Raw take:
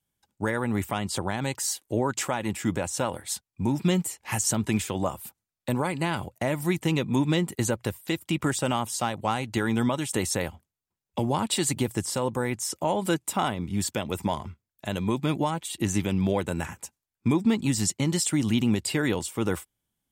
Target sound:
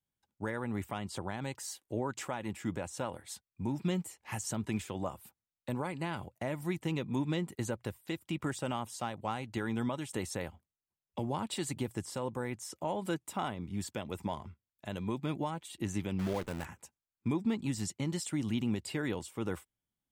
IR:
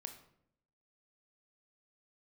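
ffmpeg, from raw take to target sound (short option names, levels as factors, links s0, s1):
-filter_complex "[0:a]asettb=1/sr,asplit=3[s0][s1][s2];[s0]atrim=end=16.194[s3];[s1]atrim=start=16.19:end=16.65,asetpts=PTS-STARTPTS,afade=t=in:d=0.004:c=qsin,afade=t=out:st=0.456:d=0.004:c=qsin,acrusher=bits=6:dc=4:mix=0:aa=0.000001[s4];[s2]atrim=start=16.646[s5];[s3][s4]acrossfade=d=0.004:c1=hsin:c2=qsin[s6];[s6][s5]acrossfade=d=0.004:c1=qsin:c2=hsin,highshelf=f=4200:g=-6,volume=0.355"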